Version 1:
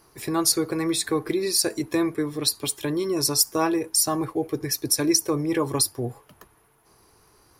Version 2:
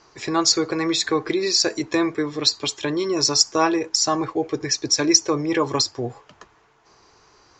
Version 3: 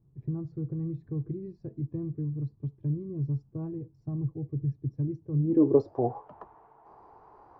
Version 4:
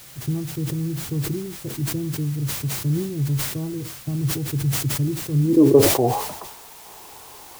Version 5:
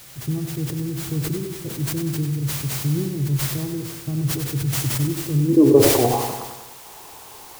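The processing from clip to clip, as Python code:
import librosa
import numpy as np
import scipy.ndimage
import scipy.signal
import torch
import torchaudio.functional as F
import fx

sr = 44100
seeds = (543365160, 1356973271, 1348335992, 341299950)

y1 = scipy.signal.sosfilt(scipy.signal.butter(16, 7300.0, 'lowpass', fs=sr, output='sos'), x)
y1 = fx.low_shelf(y1, sr, hz=360.0, db=-8.5)
y1 = y1 * librosa.db_to_amplitude(6.5)
y2 = fx.filter_sweep_lowpass(y1, sr, from_hz=140.0, to_hz=850.0, start_s=5.32, end_s=6.03, q=3.3)
y2 = fx.dynamic_eq(y2, sr, hz=2100.0, q=1.0, threshold_db=-48.0, ratio=4.0, max_db=-5)
y2 = y2 * librosa.db_to_amplitude(-2.5)
y3 = fx.dmg_noise_colour(y2, sr, seeds[0], colour='white', level_db=-51.0)
y3 = fx.sustainer(y3, sr, db_per_s=61.0)
y3 = y3 * librosa.db_to_amplitude(7.0)
y4 = fx.echo_feedback(y3, sr, ms=96, feedback_pct=56, wet_db=-7.5)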